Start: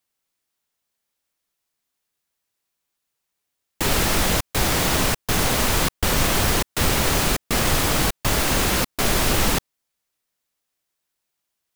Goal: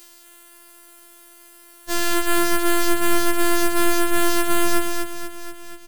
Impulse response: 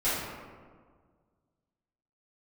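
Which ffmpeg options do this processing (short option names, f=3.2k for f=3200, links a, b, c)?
-filter_complex "[0:a]alimiter=limit=-17.5dB:level=0:latency=1,aecho=1:1:7.1:0.9,asetrate=88200,aresample=44100,equalizer=f=83:w=0.45:g=8.5,afftfilt=real='hypot(re,im)*cos(PI*b)':imag='0':win_size=512:overlap=0.75,adynamicequalizer=threshold=0.00316:dfrequency=1600:dqfactor=4:tfrequency=1600:tqfactor=4:attack=5:release=100:ratio=0.375:range=2:mode=boostabove:tftype=bell,bandreject=f=297.4:t=h:w=4,bandreject=f=594.8:t=h:w=4,bandreject=f=892.2:t=h:w=4,bandreject=f=1.1896k:t=h:w=4,bandreject=f=1.487k:t=h:w=4,bandreject=f=1.7844k:t=h:w=4,bandreject=f=2.0818k:t=h:w=4,bandreject=f=2.3792k:t=h:w=4,bandreject=f=2.6766k:t=h:w=4,bandreject=f=2.974k:t=h:w=4,bandreject=f=3.2714k:t=h:w=4,bandreject=f=3.5688k:t=h:w=4,bandreject=f=3.8662k:t=h:w=4,bandreject=f=4.1636k:t=h:w=4,bandreject=f=4.461k:t=h:w=4,bandreject=f=4.7584k:t=h:w=4,bandreject=f=5.0558k:t=h:w=4,bandreject=f=5.3532k:t=h:w=4,asplit=2[a][b];[b]aecho=0:1:241|482|723|964|1205:0.596|0.22|0.0815|0.0302|0.0112[c];[a][c]amix=inputs=2:normalize=0,acompressor=mode=upward:threshold=-24dB:ratio=2.5,afftfilt=real='re*2.83*eq(mod(b,8),0)':imag='im*2.83*eq(mod(b,8),0)':win_size=2048:overlap=0.75,volume=-1.5dB"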